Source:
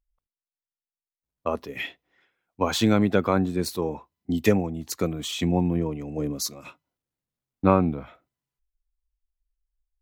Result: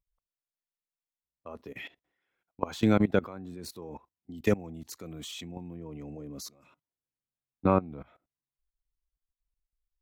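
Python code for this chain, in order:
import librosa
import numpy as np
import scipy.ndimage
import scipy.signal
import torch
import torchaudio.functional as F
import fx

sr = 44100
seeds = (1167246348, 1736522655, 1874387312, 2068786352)

y = fx.high_shelf(x, sr, hz=2500.0, db=fx.steps((0.0, -2.5), (4.47, 2.5), (5.74, -3.5)))
y = fx.level_steps(y, sr, step_db=20)
y = y * 10.0 ** (-1.5 / 20.0)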